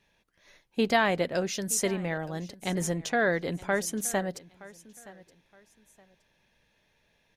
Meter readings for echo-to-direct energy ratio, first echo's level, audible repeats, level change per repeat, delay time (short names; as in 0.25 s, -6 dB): -19.5 dB, -20.0 dB, 2, -11.0 dB, 0.92 s